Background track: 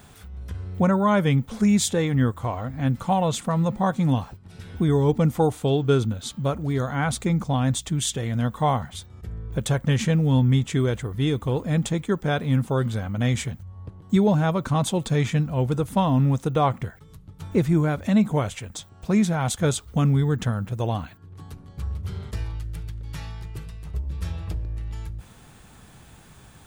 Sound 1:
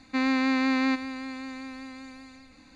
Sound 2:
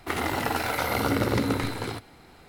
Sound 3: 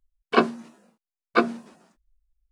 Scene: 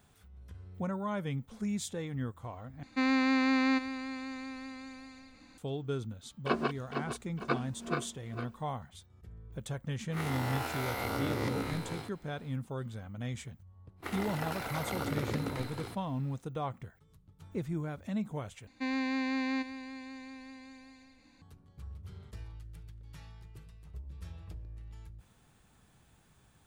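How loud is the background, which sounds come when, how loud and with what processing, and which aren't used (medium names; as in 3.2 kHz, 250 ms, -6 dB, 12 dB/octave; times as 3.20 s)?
background track -15.5 dB
2.83 s: replace with 1 -3 dB
6.13 s: add 3 -12 dB + backward echo that repeats 228 ms, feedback 61%, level -2.5 dB
10.10 s: add 2 -12.5 dB, fades 0.10 s + reverse spectral sustain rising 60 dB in 1.07 s
13.96 s: add 2 -11 dB, fades 0.10 s
18.67 s: replace with 1 -8 dB + band-stop 1.3 kHz, Q 8.1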